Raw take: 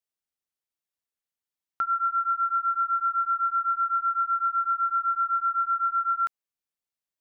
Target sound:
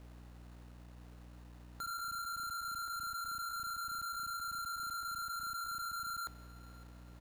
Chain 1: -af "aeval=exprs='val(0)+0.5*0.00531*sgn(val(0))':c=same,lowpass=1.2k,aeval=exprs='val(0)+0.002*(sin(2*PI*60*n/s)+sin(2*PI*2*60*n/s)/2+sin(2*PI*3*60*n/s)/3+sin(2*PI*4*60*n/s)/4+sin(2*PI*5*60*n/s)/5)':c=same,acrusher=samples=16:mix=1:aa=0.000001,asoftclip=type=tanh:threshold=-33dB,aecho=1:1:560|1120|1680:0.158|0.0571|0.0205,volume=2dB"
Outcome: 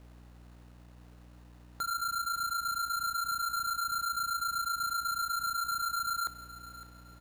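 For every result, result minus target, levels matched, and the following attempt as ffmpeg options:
echo-to-direct +6 dB; soft clip: distortion -5 dB
-af "aeval=exprs='val(0)+0.5*0.00531*sgn(val(0))':c=same,lowpass=1.2k,aeval=exprs='val(0)+0.002*(sin(2*PI*60*n/s)+sin(2*PI*2*60*n/s)/2+sin(2*PI*3*60*n/s)/3+sin(2*PI*4*60*n/s)/4+sin(2*PI*5*60*n/s)/5)':c=same,acrusher=samples=16:mix=1:aa=0.000001,asoftclip=type=tanh:threshold=-33dB,aecho=1:1:560|1120|1680:0.0794|0.0286|0.0103,volume=2dB"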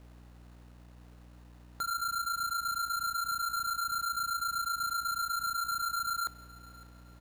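soft clip: distortion -5 dB
-af "aeval=exprs='val(0)+0.5*0.00531*sgn(val(0))':c=same,lowpass=1.2k,aeval=exprs='val(0)+0.002*(sin(2*PI*60*n/s)+sin(2*PI*2*60*n/s)/2+sin(2*PI*3*60*n/s)/3+sin(2*PI*4*60*n/s)/4+sin(2*PI*5*60*n/s)/5)':c=same,acrusher=samples=16:mix=1:aa=0.000001,asoftclip=type=tanh:threshold=-42dB,aecho=1:1:560|1120|1680:0.0794|0.0286|0.0103,volume=2dB"

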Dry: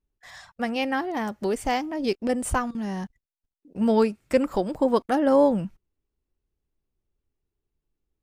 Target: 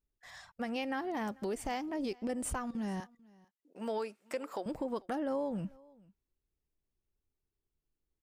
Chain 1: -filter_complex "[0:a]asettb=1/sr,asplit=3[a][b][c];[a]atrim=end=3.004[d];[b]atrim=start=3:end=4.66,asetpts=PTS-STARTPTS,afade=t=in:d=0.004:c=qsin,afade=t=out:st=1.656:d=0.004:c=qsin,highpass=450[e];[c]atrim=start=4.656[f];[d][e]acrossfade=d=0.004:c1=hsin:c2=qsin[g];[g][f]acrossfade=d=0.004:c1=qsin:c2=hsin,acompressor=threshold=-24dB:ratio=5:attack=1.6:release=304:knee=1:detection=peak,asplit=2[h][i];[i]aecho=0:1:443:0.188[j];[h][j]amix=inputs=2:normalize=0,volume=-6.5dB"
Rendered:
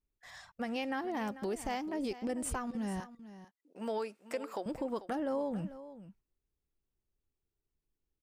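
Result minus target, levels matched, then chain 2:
echo-to-direct +10.5 dB
-filter_complex "[0:a]asettb=1/sr,asplit=3[a][b][c];[a]atrim=end=3.004[d];[b]atrim=start=3:end=4.66,asetpts=PTS-STARTPTS,afade=t=in:d=0.004:c=qsin,afade=t=out:st=1.656:d=0.004:c=qsin,highpass=450[e];[c]atrim=start=4.656[f];[d][e]acrossfade=d=0.004:c1=hsin:c2=qsin[g];[g][f]acrossfade=d=0.004:c1=qsin:c2=hsin,acompressor=threshold=-24dB:ratio=5:attack=1.6:release=304:knee=1:detection=peak,asplit=2[h][i];[i]aecho=0:1:443:0.0562[j];[h][j]amix=inputs=2:normalize=0,volume=-6.5dB"

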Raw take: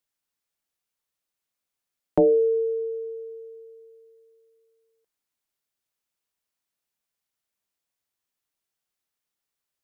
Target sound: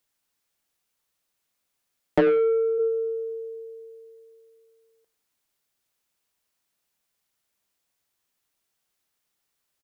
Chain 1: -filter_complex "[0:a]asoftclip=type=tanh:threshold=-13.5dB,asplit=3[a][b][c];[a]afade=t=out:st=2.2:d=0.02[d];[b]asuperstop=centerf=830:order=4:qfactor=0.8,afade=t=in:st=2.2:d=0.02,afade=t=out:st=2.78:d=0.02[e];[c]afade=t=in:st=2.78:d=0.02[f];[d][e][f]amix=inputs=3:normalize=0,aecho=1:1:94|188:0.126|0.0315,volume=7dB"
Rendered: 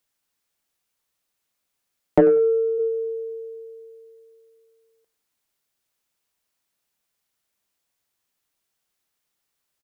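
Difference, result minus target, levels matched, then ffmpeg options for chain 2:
soft clip: distortion -10 dB
-filter_complex "[0:a]asoftclip=type=tanh:threshold=-21dB,asplit=3[a][b][c];[a]afade=t=out:st=2.2:d=0.02[d];[b]asuperstop=centerf=830:order=4:qfactor=0.8,afade=t=in:st=2.2:d=0.02,afade=t=out:st=2.78:d=0.02[e];[c]afade=t=in:st=2.78:d=0.02[f];[d][e][f]amix=inputs=3:normalize=0,aecho=1:1:94|188:0.126|0.0315,volume=7dB"

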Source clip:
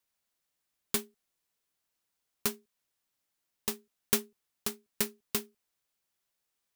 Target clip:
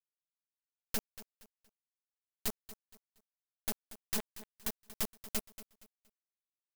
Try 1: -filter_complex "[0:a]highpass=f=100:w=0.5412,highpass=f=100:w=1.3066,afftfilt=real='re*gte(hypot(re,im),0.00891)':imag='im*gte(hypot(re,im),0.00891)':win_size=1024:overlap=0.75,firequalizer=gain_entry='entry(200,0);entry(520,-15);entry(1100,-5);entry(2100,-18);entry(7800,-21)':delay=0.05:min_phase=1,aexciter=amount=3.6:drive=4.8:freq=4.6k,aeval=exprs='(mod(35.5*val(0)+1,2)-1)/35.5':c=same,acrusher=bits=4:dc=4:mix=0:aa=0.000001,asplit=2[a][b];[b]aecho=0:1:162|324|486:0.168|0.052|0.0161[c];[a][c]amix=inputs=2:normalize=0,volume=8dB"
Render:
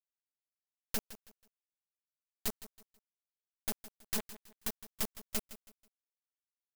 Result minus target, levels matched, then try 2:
echo 72 ms early
-filter_complex "[0:a]highpass=f=100:w=0.5412,highpass=f=100:w=1.3066,afftfilt=real='re*gte(hypot(re,im),0.00891)':imag='im*gte(hypot(re,im),0.00891)':win_size=1024:overlap=0.75,firequalizer=gain_entry='entry(200,0);entry(520,-15);entry(1100,-5);entry(2100,-18);entry(7800,-21)':delay=0.05:min_phase=1,aexciter=amount=3.6:drive=4.8:freq=4.6k,aeval=exprs='(mod(35.5*val(0)+1,2)-1)/35.5':c=same,acrusher=bits=4:dc=4:mix=0:aa=0.000001,asplit=2[a][b];[b]aecho=0:1:234|468|702:0.168|0.052|0.0161[c];[a][c]amix=inputs=2:normalize=0,volume=8dB"

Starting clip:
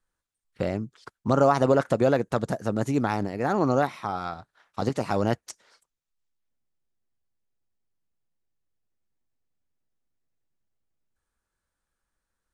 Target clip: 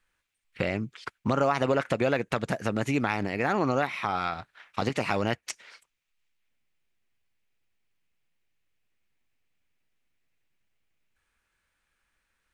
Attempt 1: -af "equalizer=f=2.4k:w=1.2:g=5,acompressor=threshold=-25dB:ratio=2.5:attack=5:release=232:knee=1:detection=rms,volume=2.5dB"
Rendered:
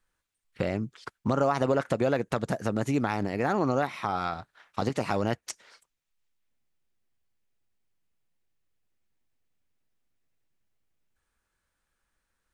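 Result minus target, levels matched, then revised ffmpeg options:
2000 Hz band -4.0 dB
-af "equalizer=f=2.4k:w=1.2:g=14,acompressor=threshold=-25dB:ratio=2.5:attack=5:release=232:knee=1:detection=rms,volume=2.5dB"

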